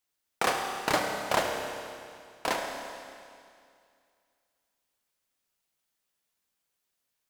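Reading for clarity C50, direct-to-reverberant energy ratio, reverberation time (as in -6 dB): 3.0 dB, 2.0 dB, 2.3 s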